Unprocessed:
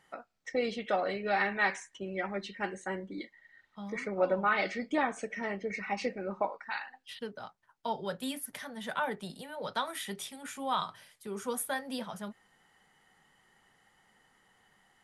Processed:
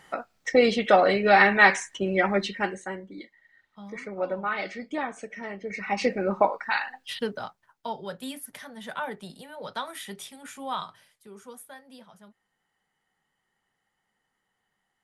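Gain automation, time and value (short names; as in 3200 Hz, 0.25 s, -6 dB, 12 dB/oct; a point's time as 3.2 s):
2.43 s +12 dB
3.03 s -1 dB
5.57 s -1 dB
6.13 s +10.5 dB
7.31 s +10.5 dB
7.95 s 0 dB
10.73 s 0 dB
11.65 s -11.5 dB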